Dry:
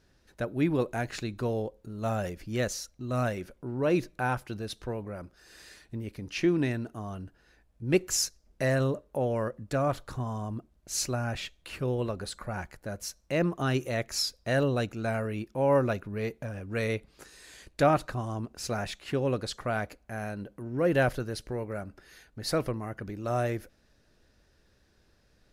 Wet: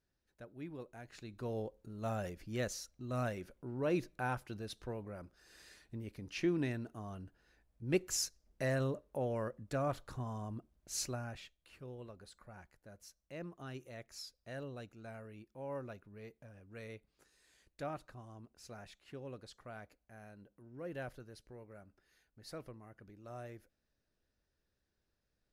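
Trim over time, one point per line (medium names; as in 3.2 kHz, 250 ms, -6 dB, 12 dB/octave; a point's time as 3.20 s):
1.01 s -20 dB
1.59 s -8 dB
11.04 s -8 dB
11.61 s -19 dB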